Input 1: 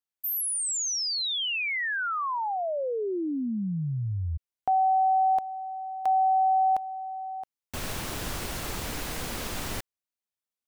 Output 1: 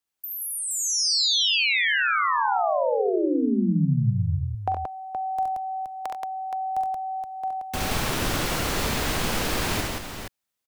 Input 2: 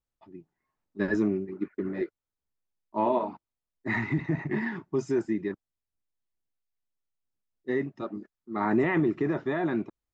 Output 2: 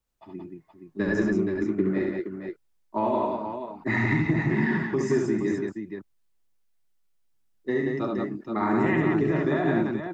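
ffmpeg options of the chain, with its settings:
-filter_complex "[0:a]acrossover=split=130|5500[a][b][c];[a]acompressor=threshold=-37dB:ratio=4[d];[b]acompressor=threshold=-31dB:ratio=4[e];[c]acompressor=threshold=-43dB:ratio=4[f];[d][e][f]amix=inputs=3:normalize=0,aecho=1:1:43|69|92|177|472:0.266|0.668|0.224|0.708|0.447,volume=6dB"

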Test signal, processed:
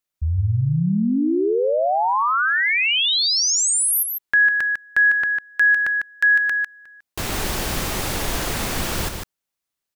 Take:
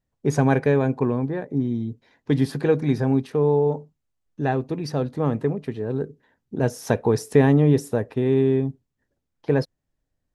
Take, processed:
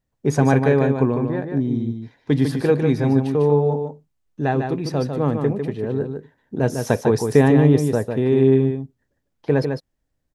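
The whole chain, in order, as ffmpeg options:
-af "aecho=1:1:150:0.501,volume=2dB"

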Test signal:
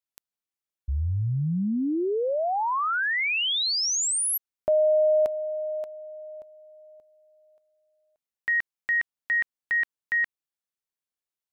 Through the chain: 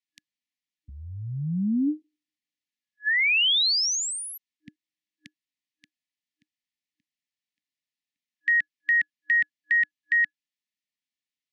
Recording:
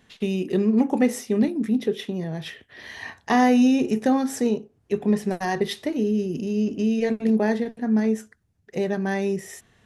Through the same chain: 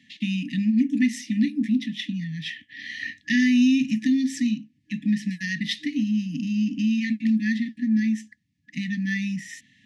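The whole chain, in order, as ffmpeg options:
-filter_complex "[0:a]afftfilt=real='re*(1-between(b*sr/4096,310,1700))':imag='im*(1-between(b*sr/4096,310,1700))':win_size=4096:overlap=0.75,acrossover=split=260|2300[a][b][c];[a]acompressor=threshold=-31dB:ratio=1.5[d];[b]acompressor=threshold=-34dB:ratio=1.5[e];[d][e][c]amix=inputs=3:normalize=0,highpass=200,lowpass=5k,volume=5dB"

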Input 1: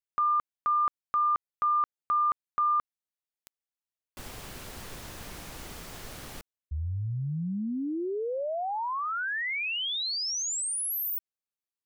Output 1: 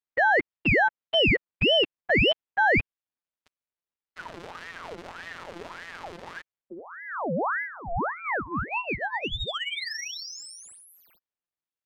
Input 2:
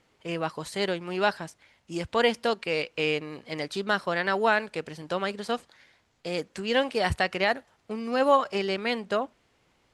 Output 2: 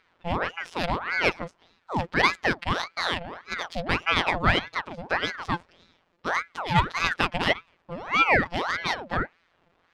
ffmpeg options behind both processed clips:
-af "afftfilt=real='hypot(re,im)*cos(PI*b)':imag='0':win_size=1024:overlap=0.75,adynamicsmooth=sensitivity=2:basefreq=3k,aeval=exprs='val(0)*sin(2*PI*1100*n/s+1100*0.7/1.7*sin(2*PI*1.7*n/s))':c=same,volume=8.5dB"

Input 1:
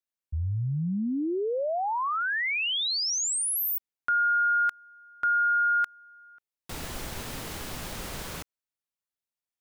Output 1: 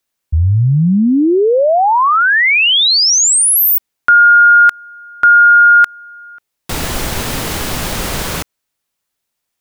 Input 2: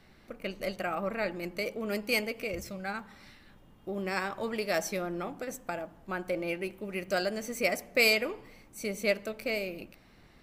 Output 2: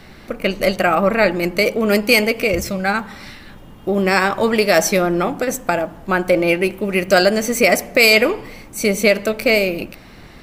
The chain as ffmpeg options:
-af "alimiter=level_in=18.5dB:limit=-1dB:release=50:level=0:latency=1,volume=-1dB"

